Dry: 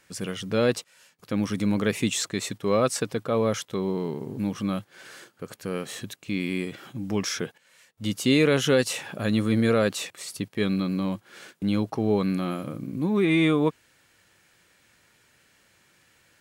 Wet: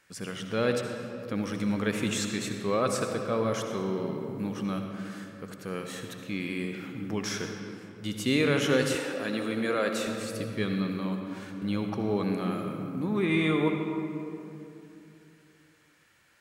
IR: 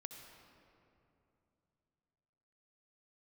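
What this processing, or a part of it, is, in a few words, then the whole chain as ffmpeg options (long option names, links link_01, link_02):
stairwell: -filter_complex "[1:a]atrim=start_sample=2205[link_01];[0:a][link_01]afir=irnorm=-1:irlink=0,asettb=1/sr,asplit=3[link_02][link_03][link_04];[link_02]atrim=end=8.954[link_05];[link_03]atrim=start=8.95:end=10.07,asetpts=PTS-STARTPTS,afade=type=in:duration=0.004:curve=qsin,afade=type=out:start_time=1.116:duration=0.004:curve=qsin,highpass=250[link_06];[link_04]atrim=start=10.066[link_07];[link_05][link_06]acrossfade=duration=0.004:curve1=hsin:curve2=qsin[link_08];[link_08][link_07]acrossfade=duration=0.004:curve1=qsin:curve2=hsin,equalizer=frequency=1500:width=0.98:gain=4"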